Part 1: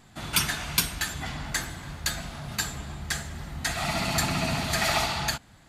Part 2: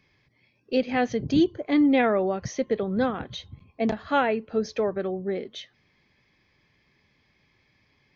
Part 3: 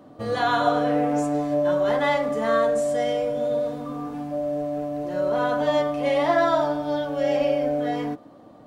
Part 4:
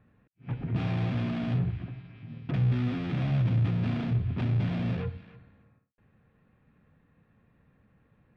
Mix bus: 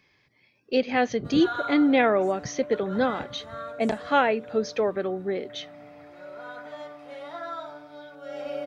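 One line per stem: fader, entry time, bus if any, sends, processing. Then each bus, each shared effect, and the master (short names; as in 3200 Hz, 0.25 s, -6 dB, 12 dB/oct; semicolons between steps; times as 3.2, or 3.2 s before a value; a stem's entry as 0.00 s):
-19.0 dB, 1.85 s, no send, elliptic band-pass 390–2200 Hz; compressor, threshold -34 dBFS, peak gain reduction 11 dB
+2.5 dB, 0.00 s, no send, dry
-5.5 dB, 1.05 s, no send, small resonant body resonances 1400/3800 Hz, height 18 dB, ringing for 45 ms; auto duck -12 dB, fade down 2.00 s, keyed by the second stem
-14.5 dB, 0.95 s, no send, compressor, threshold -37 dBFS, peak gain reduction 14 dB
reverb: off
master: low shelf 200 Hz -9.5 dB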